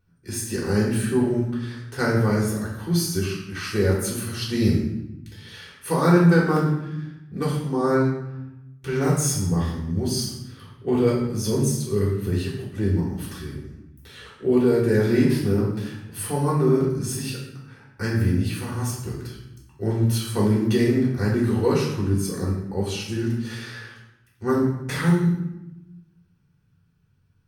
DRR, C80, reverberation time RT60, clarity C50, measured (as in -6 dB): -6.0 dB, 6.0 dB, 0.90 s, 3.0 dB